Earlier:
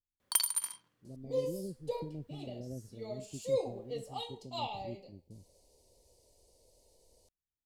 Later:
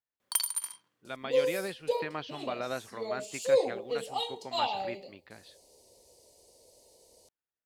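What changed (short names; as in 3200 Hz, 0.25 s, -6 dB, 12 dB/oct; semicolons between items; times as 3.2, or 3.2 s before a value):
speech: remove Gaussian blur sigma 23 samples; second sound +8.0 dB; master: add HPF 250 Hz 6 dB/oct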